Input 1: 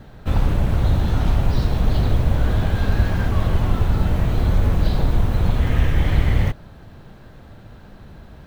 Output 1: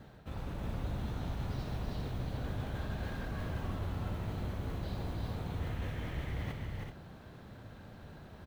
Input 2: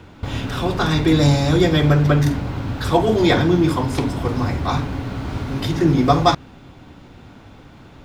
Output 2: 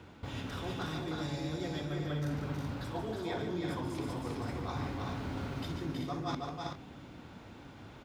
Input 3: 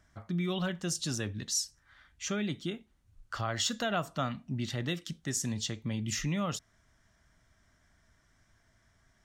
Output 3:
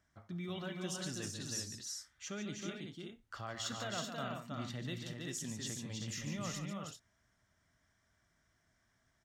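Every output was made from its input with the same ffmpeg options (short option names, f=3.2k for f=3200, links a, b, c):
-af "highpass=f=81:p=1,areverse,acompressor=threshold=-27dB:ratio=10,areverse,aecho=1:1:67|145|320|380|406:0.133|0.376|0.631|0.501|0.188,volume=-9dB"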